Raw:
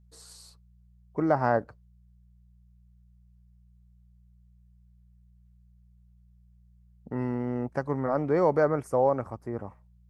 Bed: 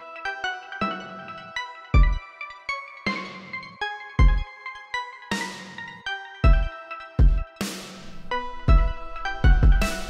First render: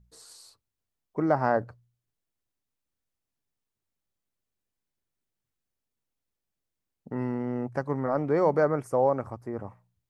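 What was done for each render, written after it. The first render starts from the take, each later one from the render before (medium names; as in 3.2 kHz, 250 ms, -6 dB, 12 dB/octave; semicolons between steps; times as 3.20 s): de-hum 60 Hz, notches 3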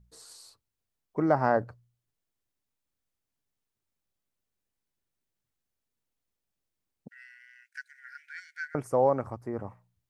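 7.08–8.75 s: brick-wall FIR high-pass 1.4 kHz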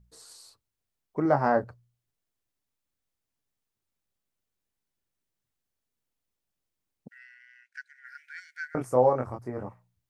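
1.23–1.64 s: doubling 21 ms -6.5 dB; 7.18–8.05 s: distance through air 63 m; 8.72–9.69 s: doubling 24 ms -3 dB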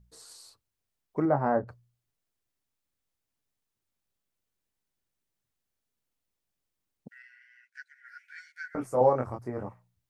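1.25–1.68 s: tape spacing loss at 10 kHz 39 dB; 7.22–9.01 s: three-phase chorus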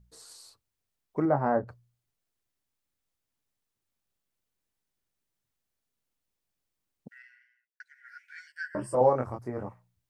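7.20–7.80 s: studio fade out; 8.47–8.95 s: rippled EQ curve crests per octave 1.3, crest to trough 18 dB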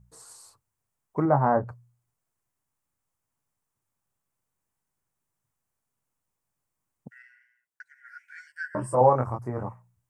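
graphic EQ 125/1000/4000/8000 Hz +8/+8/-8/+5 dB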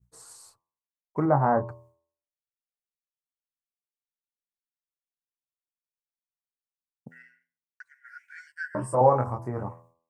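expander -52 dBFS; de-hum 83.34 Hz, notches 14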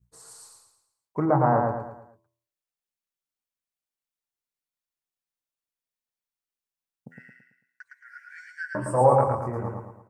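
feedback delay 111 ms, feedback 42%, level -3.5 dB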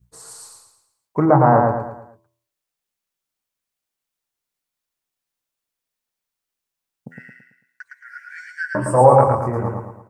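trim +8 dB; peak limiter -1 dBFS, peak gain reduction 1.5 dB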